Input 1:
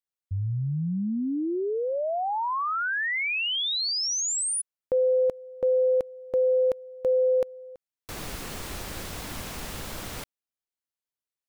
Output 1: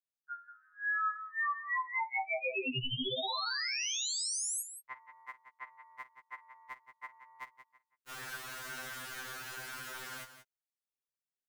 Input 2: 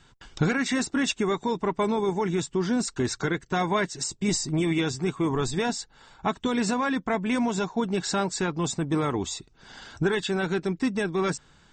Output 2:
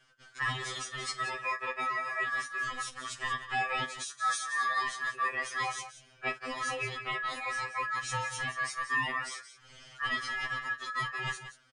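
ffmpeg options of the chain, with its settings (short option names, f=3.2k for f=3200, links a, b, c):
-af "aecho=1:1:48|178:0.15|0.266,aeval=exprs='val(0)*sin(2*PI*1500*n/s)':c=same,afftfilt=real='re*2.45*eq(mod(b,6),0)':imag='im*2.45*eq(mod(b,6),0)':win_size=2048:overlap=0.75,volume=-3dB"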